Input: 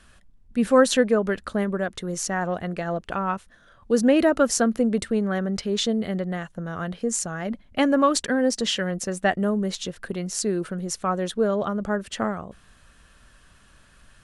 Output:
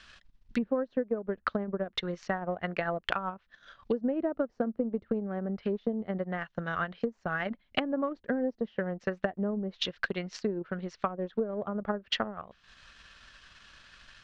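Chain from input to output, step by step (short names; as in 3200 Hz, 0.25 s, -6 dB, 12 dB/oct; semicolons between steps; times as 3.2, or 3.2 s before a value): treble ducked by the level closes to 540 Hz, closed at -21 dBFS; LPF 5300 Hz 24 dB/oct; tilt shelf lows -8 dB, about 1100 Hz; transient shaper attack +7 dB, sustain -11 dB; compressor 12:1, threshold -25 dBFS, peak gain reduction 10.5 dB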